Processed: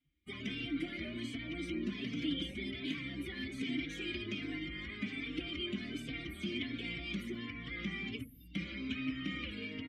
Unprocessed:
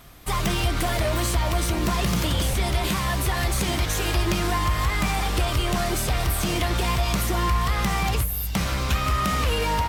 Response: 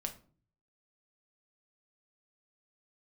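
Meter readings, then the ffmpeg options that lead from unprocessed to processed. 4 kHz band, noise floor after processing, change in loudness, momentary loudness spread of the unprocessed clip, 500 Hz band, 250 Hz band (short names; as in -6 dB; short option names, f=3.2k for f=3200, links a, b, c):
-13.0 dB, -54 dBFS, -15.5 dB, 1 LU, -18.0 dB, -9.0 dB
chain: -filter_complex "[0:a]afftdn=nr=23:nf=-34,asplit=3[a][b][c];[a]bandpass=f=270:t=q:w=8,volume=0dB[d];[b]bandpass=f=2.29k:t=q:w=8,volume=-6dB[e];[c]bandpass=f=3.01k:t=q:w=8,volume=-9dB[f];[d][e][f]amix=inputs=3:normalize=0,asplit=2[g][h];[h]adelay=3.9,afreqshift=1.3[i];[g][i]amix=inputs=2:normalize=1,volume=4dB"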